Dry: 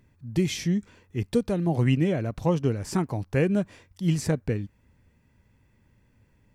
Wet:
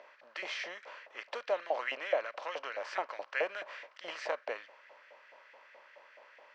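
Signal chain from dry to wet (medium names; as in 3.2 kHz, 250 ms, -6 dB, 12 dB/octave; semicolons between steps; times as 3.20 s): spectral levelling over time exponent 0.6; LFO high-pass saw up 4.7 Hz 690–1900 Hz; cabinet simulation 440–4400 Hz, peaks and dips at 580 Hz +10 dB, 830 Hz -5 dB, 3.5 kHz -4 dB; trim -7 dB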